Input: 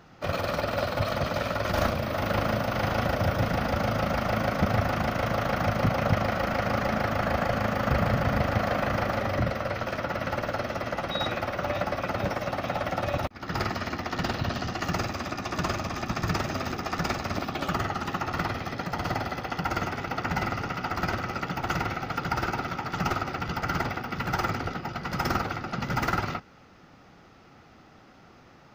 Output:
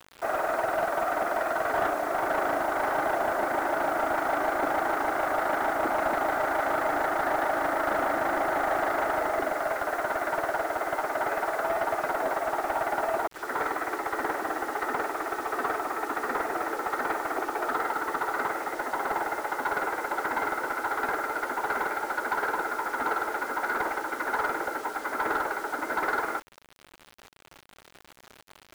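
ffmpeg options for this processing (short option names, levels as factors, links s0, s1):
-filter_complex "[0:a]highpass=f=240:t=q:w=0.5412,highpass=f=240:t=q:w=1.307,lowpass=f=2000:t=q:w=0.5176,lowpass=f=2000:t=q:w=0.7071,lowpass=f=2000:t=q:w=1.932,afreqshift=78,asplit=2[s0][s1];[s1]highpass=f=720:p=1,volume=6.31,asoftclip=type=tanh:threshold=0.211[s2];[s0][s2]amix=inputs=2:normalize=0,lowpass=f=1300:p=1,volume=0.501,acrusher=bits=6:mix=0:aa=0.000001,volume=0.794"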